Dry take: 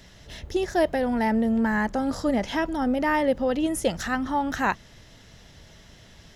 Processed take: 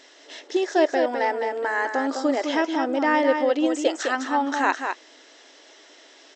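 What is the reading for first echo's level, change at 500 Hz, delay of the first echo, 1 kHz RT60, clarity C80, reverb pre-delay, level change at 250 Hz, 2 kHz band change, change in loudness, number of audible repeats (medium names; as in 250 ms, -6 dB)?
-6.0 dB, +3.5 dB, 206 ms, no reverb, no reverb, no reverb, -1.0 dB, +3.5 dB, +2.0 dB, 1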